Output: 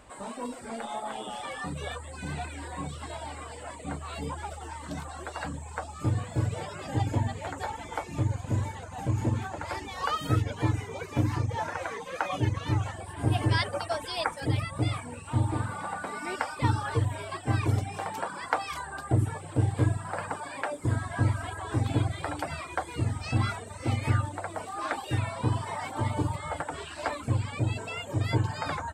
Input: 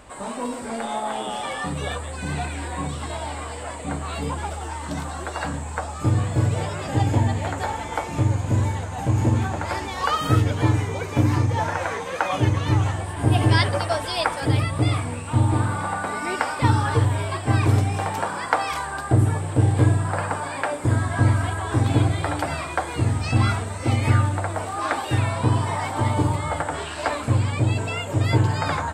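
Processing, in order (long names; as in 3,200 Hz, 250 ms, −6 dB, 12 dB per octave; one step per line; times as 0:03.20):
reverb reduction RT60 0.69 s
level −6.5 dB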